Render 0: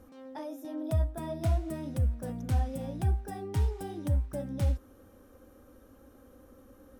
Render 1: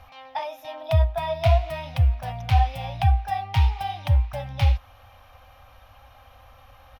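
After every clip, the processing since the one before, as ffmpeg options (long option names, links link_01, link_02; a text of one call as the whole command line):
ffmpeg -i in.wav -af "firequalizer=gain_entry='entry(130,0);entry(190,-18);entry(360,-29);entry(700,9);entry(1500,0);entry(2400,13);entry(5100,2);entry(8000,-15);entry(12000,-6)':delay=0.05:min_phase=1,volume=8.5dB" out.wav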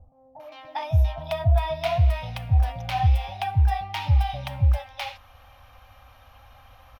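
ffmpeg -i in.wav -filter_complex "[0:a]acrossover=split=530[link_01][link_02];[link_02]adelay=400[link_03];[link_01][link_03]amix=inputs=2:normalize=0" out.wav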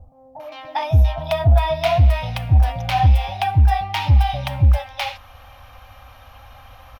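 ffmpeg -i in.wav -af "asoftclip=type=tanh:threshold=-12.5dB,volume=7.5dB" out.wav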